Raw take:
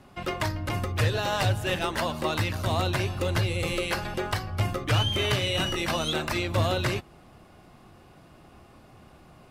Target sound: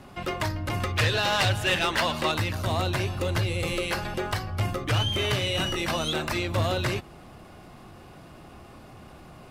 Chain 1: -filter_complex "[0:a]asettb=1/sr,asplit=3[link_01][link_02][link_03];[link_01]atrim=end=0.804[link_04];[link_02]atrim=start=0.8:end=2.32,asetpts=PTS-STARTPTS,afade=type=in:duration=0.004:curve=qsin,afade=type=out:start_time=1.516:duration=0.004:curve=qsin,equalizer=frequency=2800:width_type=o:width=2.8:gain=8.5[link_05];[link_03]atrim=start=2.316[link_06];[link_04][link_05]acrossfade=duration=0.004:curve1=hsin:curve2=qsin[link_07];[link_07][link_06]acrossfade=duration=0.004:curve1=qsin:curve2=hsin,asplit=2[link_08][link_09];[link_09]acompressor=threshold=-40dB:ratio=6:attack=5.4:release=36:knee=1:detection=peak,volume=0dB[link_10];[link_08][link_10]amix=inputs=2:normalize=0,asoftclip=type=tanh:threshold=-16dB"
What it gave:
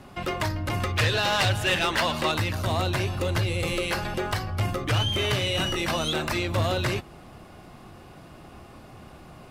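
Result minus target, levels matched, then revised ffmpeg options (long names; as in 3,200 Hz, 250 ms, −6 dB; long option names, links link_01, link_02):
downward compressor: peak gain reduction −9.5 dB
-filter_complex "[0:a]asettb=1/sr,asplit=3[link_01][link_02][link_03];[link_01]atrim=end=0.804[link_04];[link_02]atrim=start=0.8:end=2.32,asetpts=PTS-STARTPTS,afade=type=in:duration=0.004:curve=qsin,afade=type=out:start_time=1.516:duration=0.004:curve=qsin,equalizer=frequency=2800:width_type=o:width=2.8:gain=8.5[link_05];[link_03]atrim=start=2.316[link_06];[link_04][link_05]acrossfade=duration=0.004:curve1=hsin:curve2=qsin[link_07];[link_07][link_06]acrossfade=duration=0.004:curve1=qsin:curve2=hsin,asplit=2[link_08][link_09];[link_09]acompressor=threshold=-51.5dB:ratio=6:attack=5.4:release=36:knee=1:detection=peak,volume=0dB[link_10];[link_08][link_10]amix=inputs=2:normalize=0,asoftclip=type=tanh:threshold=-16dB"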